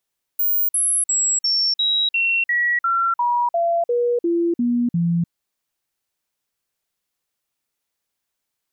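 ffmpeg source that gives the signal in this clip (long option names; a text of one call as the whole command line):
ffmpeg -f lavfi -i "aevalsrc='0.158*clip(min(mod(t,0.35),0.3-mod(t,0.35))/0.005,0,1)*sin(2*PI*15400*pow(2,-floor(t/0.35)/2)*mod(t,0.35))':duration=4.9:sample_rate=44100" out.wav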